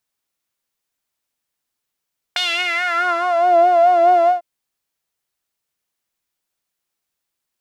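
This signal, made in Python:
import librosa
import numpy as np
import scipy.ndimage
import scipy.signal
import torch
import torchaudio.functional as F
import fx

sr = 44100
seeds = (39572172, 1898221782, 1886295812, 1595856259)

y = fx.sub_patch_vibrato(sr, seeds[0], note=77, wave='saw', wave2='saw', interval_st=-12, detune_cents=10, level2_db=-9.0, sub_db=-11.5, noise_db=-27.0, kind='bandpass', cutoff_hz=640.0, q=3.5, env_oct=2.5, env_decay_s=1.13, env_sustain_pct=5, attack_ms=3.4, decay_s=0.31, sustain_db=-3.0, release_s=0.13, note_s=1.92, lfo_hz=4.7, vibrato_cents=65)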